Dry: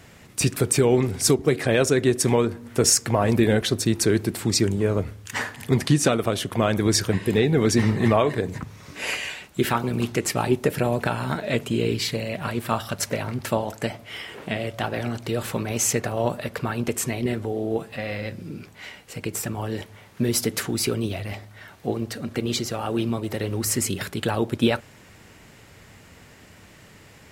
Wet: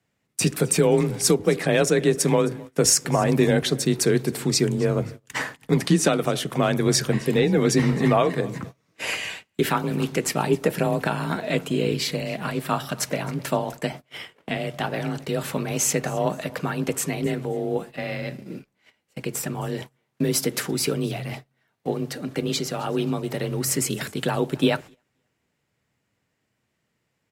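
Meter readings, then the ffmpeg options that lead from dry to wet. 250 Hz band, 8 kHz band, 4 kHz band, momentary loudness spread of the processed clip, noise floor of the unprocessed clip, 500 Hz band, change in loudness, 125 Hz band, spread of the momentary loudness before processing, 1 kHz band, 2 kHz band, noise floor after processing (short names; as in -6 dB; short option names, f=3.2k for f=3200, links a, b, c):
0.0 dB, 0.0 dB, 0.0 dB, 12 LU, -50 dBFS, +0.5 dB, 0.0 dB, -0.5 dB, 11 LU, +0.5 dB, 0.0 dB, -75 dBFS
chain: -af "aecho=1:1:264|528|792:0.0794|0.0286|0.0103,agate=range=-26dB:threshold=-35dB:ratio=16:detection=peak,afreqshift=28"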